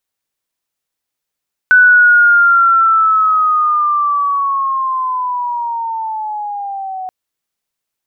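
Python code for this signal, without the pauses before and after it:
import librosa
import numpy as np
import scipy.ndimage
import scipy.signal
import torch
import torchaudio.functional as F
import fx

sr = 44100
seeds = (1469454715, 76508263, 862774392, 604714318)

y = fx.chirp(sr, length_s=5.38, from_hz=1500.0, to_hz=740.0, law='linear', from_db=-3.5, to_db=-21.0)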